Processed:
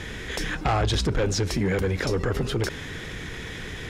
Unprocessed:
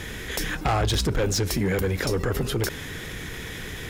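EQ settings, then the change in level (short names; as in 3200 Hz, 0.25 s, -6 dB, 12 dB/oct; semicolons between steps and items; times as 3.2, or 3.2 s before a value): Bessel low-pass 6300 Hz, order 2; 0.0 dB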